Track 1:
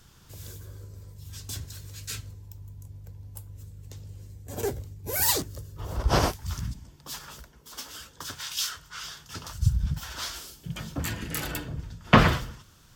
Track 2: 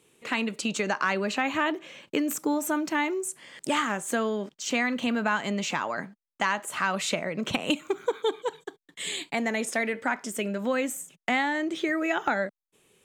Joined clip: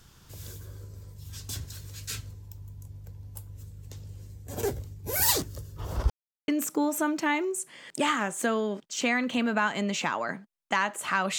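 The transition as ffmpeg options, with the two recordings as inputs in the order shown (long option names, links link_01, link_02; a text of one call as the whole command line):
ffmpeg -i cue0.wav -i cue1.wav -filter_complex "[0:a]apad=whole_dur=11.38,atrim=end=11.38,asplit=2[link_01][link_02];[link_01]atrim=end=6.1,asetpts=PTS-STARTPTS,afade=type=out:start_time=6.096:duration=0.004:curve=hsin[link_03];[link_02]atrim=start=6.1:end=6.48,asetpts=PTS-STARTPTS,volume=0[link_04];[1:a]atrim=start=2.17:end=7.07,asetpts=PTS-STARTPTS,afade=type=in:duration=0.004:curve=hsin[link_05];[link_03][link_04][link_05]concat=n=3:v=0:a=1" out.wav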